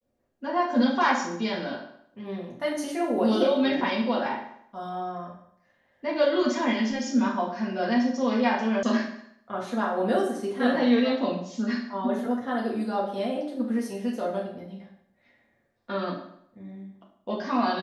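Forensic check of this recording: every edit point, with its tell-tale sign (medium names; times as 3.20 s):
8.83 s: sound stops dead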